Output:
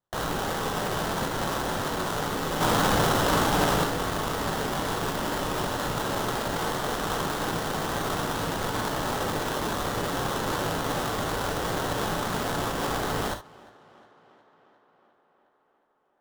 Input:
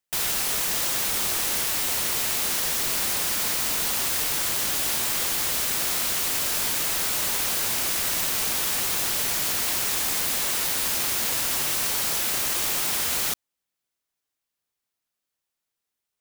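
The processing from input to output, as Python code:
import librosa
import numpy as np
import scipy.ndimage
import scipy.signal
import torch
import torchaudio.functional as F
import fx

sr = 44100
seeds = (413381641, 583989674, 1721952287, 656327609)

y = fx.high_shelf(x, sr, hz=6800.0, db=8.0, at=(2.6, 3.84))
y = fx.sample_hold(y, sr, seeds[0], rate_hz=2400.0, jitter_pct=20)
y = fx.echo_tape(y, sr, ms=358, feedback_pct=76, wet_db=-22.0, lp_hz=4700.0, drive_db=18.0, wow_cents=29)
y = fx.rev_gated(y, sr, seeds[1], gate_ms=90, shape='flat', drr_db=5.0)
y = y * 10.0 ** (-4.5 / 20.0)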